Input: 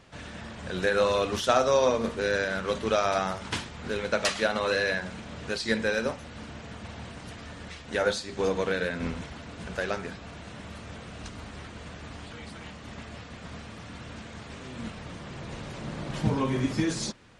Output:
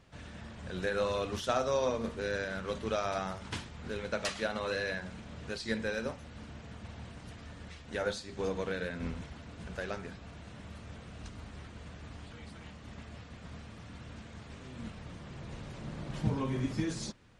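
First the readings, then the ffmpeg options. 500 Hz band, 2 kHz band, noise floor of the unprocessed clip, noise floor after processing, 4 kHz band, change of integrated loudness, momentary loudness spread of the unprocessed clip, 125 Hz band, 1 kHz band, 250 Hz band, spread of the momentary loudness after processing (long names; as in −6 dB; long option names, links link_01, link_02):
−8.0 dB, −8.5 dB, −44 dBFS, −50 dBFS, −8.5 dB, −8.5 dB, 17 LU, −4.0 dB, −8.5 dB, −6.0 dB, 16 LU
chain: -af "lowshelf=frequency=170:gain=7,volume=-8.5dB"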